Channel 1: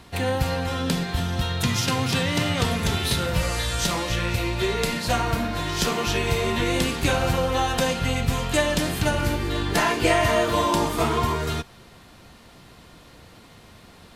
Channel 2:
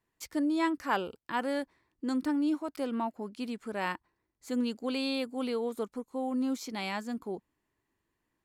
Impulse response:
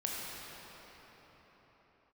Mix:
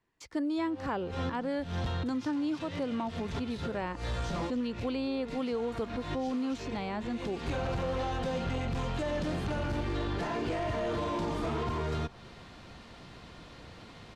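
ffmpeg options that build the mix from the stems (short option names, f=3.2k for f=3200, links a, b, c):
-filter_complex "[0:a]alimiter=limit=-14.5dB:level=0:latency=1,volume=23.5dB,asoftclip=hard,volume=-23.5dB,adelay=450,volume=-1dB[a];[1:a]volume=2.5dB,asplit=2[b][c];[c]apad=whole_len=644115[d];[a][d]sidechaincompress=threshold=-50dB:ratio=4:attack=41:release=115[e];[e][b]amix=inputs=2:normalize=0,acrossover=split=640|1300[f][g][h];[f]acompressor=threshold=-31dB:ratio=4[i];[g]acompressor=threshold=-42dB:ratio=4[j];[h]acompressor=threshold=-45dB:ratio=4[k];[i][j][k]amix=inputs=3:normalize=0,lowpass=5.6k"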